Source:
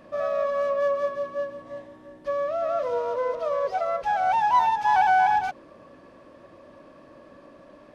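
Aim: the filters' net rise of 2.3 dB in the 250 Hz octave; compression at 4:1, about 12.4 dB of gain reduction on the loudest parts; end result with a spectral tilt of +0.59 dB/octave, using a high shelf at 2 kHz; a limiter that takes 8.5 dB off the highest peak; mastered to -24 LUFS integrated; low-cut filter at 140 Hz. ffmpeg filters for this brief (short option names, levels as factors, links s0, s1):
-af "highpass=140,equalizer=f=250:t=o:g=3.5,highshelf=f=2000:g=-5,acompressor=threshold=0.0251:ratio=4,volume=6.31,alimiter=limit=0.158:level=0:latency=1"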